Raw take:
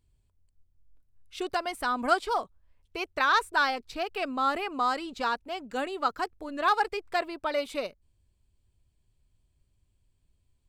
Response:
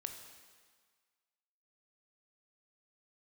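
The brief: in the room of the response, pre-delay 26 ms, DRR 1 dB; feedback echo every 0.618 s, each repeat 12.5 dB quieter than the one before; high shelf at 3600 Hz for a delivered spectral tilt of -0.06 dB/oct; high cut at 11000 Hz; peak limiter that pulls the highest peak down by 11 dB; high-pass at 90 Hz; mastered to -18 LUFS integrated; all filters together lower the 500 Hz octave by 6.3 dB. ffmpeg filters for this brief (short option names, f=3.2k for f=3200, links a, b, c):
-filter_complex "[0:a]highpass=90,lowpass=11k,equalizer=f=500:t=o:g=-8.5,highshelf=f=3.6k:g=-8.5,alimiter=level_in=2dB:limit=-24dB:level=0:latency=1,volume=-2dB,aecho=1:1:618|1236|1854:0.237|0.0569|0.0137,asplit=2[a][b];[1:a]atrim=start_sample=2205,adelay=26[c];[b][c]afir=irnorm=-1:irlink=0,volume=1.5dB[d];[a][d]amix=inputs=2:normalize=0,volume=16dB"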